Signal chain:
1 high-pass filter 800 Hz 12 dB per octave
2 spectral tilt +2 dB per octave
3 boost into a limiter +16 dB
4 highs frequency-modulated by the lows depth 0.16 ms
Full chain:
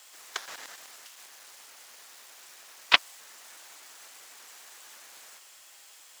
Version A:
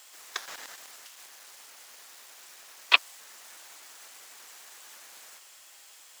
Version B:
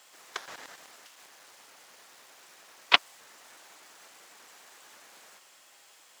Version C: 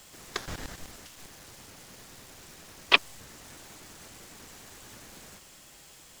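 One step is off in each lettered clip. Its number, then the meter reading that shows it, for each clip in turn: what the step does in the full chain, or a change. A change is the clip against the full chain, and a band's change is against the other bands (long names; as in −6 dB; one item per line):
4, 2 kHz band +2.0 dB
2, 8 kHz band −5.5 dB
1, 125 Hz band +13.0 dB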